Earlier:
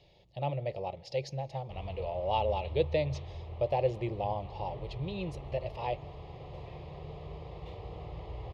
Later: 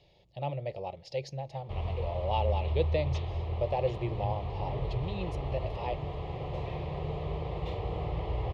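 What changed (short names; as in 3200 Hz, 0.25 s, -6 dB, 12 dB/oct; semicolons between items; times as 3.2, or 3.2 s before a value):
speech: send -8.5 dB; background +9.0 dB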